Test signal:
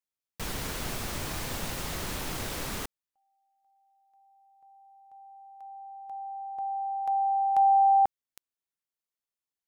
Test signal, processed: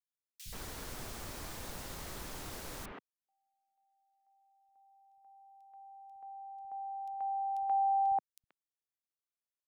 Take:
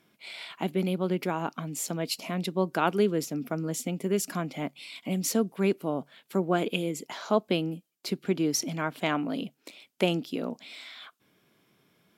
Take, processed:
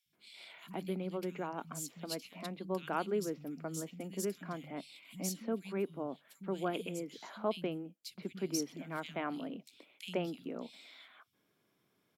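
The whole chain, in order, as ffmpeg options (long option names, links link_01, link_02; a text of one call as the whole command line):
ffmpeg -i in.wav -filter_complex "[0:a]acrossover=split=160|2700[link_01][link_02][link_03];[link_01]adelay=60[link_04];[link_02]adelay=130[link_05];[link_04][link_05][link_03]amix=inputs=3:normalize=0,volume=-9dB" out.wav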